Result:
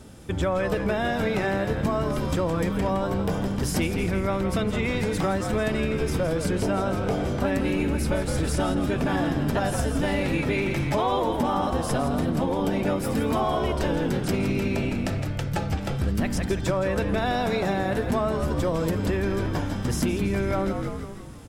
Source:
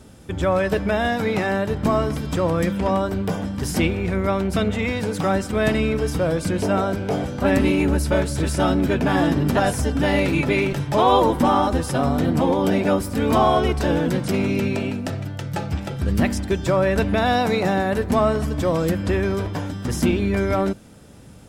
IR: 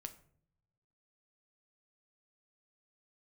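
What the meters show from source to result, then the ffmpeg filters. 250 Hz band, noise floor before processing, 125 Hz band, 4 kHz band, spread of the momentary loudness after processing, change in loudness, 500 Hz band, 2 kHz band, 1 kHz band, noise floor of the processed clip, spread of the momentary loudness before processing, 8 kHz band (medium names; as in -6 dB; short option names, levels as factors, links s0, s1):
-4.5 dB, -32 dBFS, -3.0 dB, -4.5 dB, 2 LU, -4.5 dB, -5.0 dB, -4.5 dB, -6.0 dB, -30 dBFS, 7 LU, -2.5 dB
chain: -filter_complex "[0:a]asplit=2[s0][s1];[s1]asplit=6[s2][s3][s4][s5][s6][s7];[s2]adelay=165,afreqshift=-61,volume=0.376[s8];[s3]adelay=330,afreqshift=-122,volume=0.2[s9];[s4]adelay=495,afreqshift=-183,volume=0.106[s10];[s5]adelay=660,afreqshift=-244,volume=0.0562[s11];[s6]adelay=825,afreqshift=-305,volume=0.0295[s12];[s7]adelay=990,afreqshift=-366,volume=0.0157[s13];[s8][s9][s10][s11][s12][s13]amix=inputs=6:normalize=0[s14];[s0][s14]amix=inputs=2:normalize=0,acompressor=threshold=0.0891:ratio=6"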